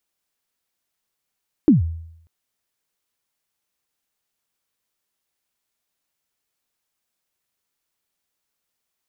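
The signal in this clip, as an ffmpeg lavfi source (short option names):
-f lavfi -i "aevalsrc='0.473*pow(10,-3*t/0.74)*sin(2*PI*(340*0.14/log(82/340)*(exp(log(82/340)*min(t,0.14)/0.14)-1)+82*max(t-0.14,0)))':d=0.59:s=44100"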